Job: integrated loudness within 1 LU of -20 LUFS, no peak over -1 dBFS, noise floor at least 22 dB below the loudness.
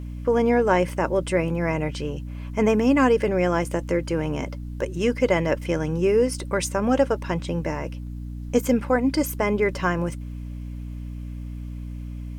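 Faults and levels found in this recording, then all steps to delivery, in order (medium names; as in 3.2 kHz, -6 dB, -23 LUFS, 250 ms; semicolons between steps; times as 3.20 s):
hum 60 Hz; highest harmonic 300 Hz; hum level -31 dBFS; loudness -23.5 LUFS; peak level -6.0 dBFS; loudness target -20.0 LUFS
-> de-hum 60 Hz, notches 5; trim +3.5 dB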